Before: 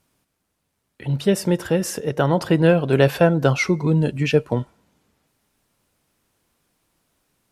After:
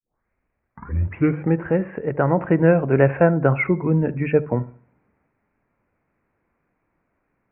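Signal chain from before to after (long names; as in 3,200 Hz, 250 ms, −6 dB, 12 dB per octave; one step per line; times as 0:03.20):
turntable start at the beginning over 1.63 s
Butterworth low-pass 2,400 Hz 72 dB per octave
mains-hum notches 50/100/150 Hz
feedback echo with a low-pass in the loop 73 ms, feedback 36%, low-pass 880 Hz, level −16.5 dB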